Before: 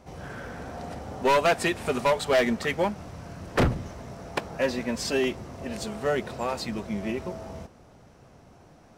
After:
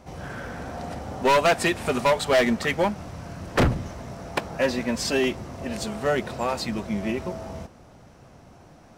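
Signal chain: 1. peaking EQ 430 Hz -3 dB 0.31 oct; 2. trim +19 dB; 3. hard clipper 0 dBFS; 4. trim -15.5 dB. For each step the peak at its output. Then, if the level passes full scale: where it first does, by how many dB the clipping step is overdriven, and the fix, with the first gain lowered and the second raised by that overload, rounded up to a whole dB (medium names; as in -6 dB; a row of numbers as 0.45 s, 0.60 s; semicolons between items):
-15.5 dBFS, +3.5 dBFS, 0.0 dBFS, -15.5 dBFS; step 2, 3.5 dB; step 2 +15 dB, step 4 -11.5 dB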